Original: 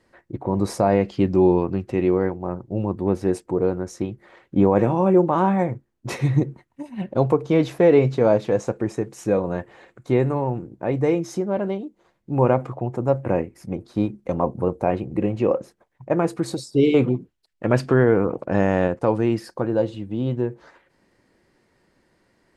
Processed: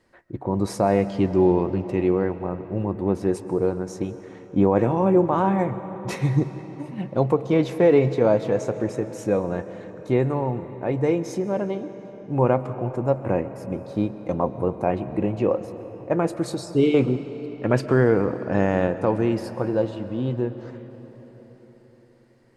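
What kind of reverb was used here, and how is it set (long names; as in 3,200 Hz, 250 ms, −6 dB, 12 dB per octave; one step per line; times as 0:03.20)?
comb and all-pass reverb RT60 4.8 s, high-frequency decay 0.7×, pre-delay 90 ms, DRR 12 dB
level −1.5 dB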